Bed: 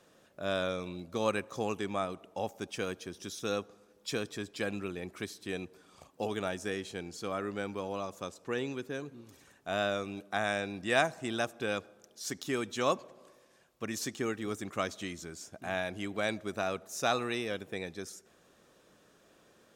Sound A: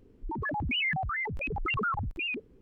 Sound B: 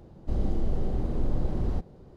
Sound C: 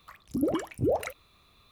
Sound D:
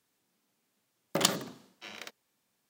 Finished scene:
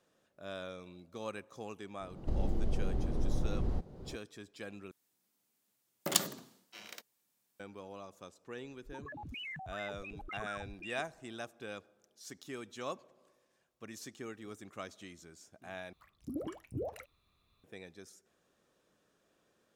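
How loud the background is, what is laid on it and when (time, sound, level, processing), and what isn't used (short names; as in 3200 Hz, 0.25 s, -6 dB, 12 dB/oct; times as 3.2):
bed -11 dB
2 add B -5.5 dB + recorder AGC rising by 32 dB/s
4.91 replace with D -7 dB + high shelf 6800 Hz +11 dB
8.63 add A -14.5 dB
15.93 replace with C -14.5 dB + low shelf 280 Hz +5 dB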